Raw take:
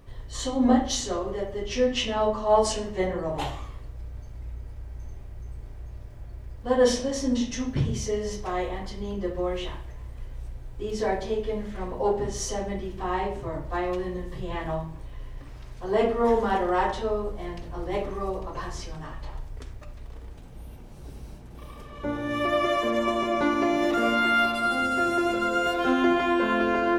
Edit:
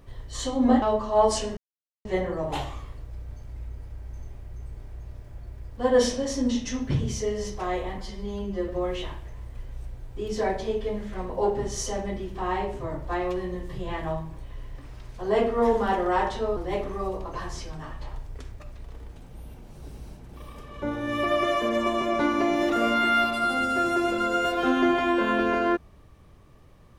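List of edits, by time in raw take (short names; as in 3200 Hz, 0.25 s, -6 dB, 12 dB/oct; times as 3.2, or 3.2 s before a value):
0.82–2.16 cut
2.91 insert silence 0.48 s
8.84–9.31 stretch 1.5×
17.19–17.78 cut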